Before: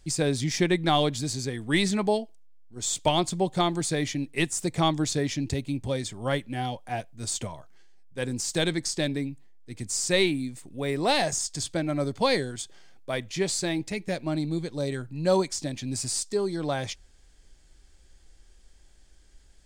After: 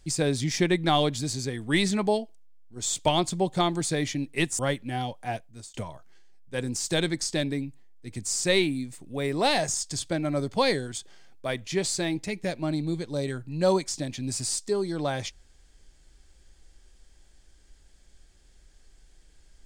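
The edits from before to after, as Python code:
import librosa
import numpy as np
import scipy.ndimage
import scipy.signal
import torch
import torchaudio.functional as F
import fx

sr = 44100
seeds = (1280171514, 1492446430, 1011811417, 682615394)

y = fx.edit(x, sr, fx.cut(start_s=4.59, length_s=1.64),
    fx.fade_out_span(start_s=6.99, length_s=0.39), tone=tone)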